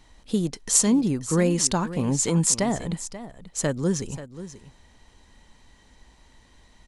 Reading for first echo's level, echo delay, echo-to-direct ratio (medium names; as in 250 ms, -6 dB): -14.0 dB, 535 ms, -14.0 dB